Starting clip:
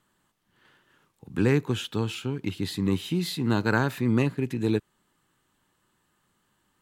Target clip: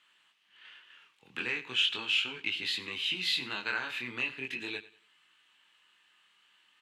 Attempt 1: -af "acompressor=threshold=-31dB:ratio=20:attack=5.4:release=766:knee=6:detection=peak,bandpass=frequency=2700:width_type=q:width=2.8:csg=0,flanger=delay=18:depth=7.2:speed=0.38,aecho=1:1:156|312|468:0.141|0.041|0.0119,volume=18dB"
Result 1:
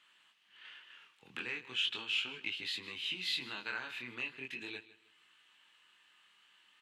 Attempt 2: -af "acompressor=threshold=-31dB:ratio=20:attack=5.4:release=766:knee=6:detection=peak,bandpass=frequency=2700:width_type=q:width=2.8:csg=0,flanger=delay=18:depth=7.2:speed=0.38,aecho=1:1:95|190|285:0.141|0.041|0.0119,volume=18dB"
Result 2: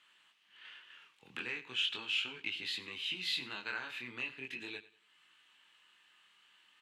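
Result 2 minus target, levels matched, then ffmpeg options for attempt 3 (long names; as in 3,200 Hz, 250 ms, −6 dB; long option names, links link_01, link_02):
downward compressor: peak gain reduction +6.5 dB
-af "acompressor=threshold=-24dB:ratio=20:attack=5.4:release=766:knee=6:detection=peak,bandpass=frequency=2700:width_type=q:width=2.8:csg=0,flanger=delay=18:depth=7.2:speed=0.38,aecho=1:1:95|190|285:0.141|0.041|0.0119,volume=18dB"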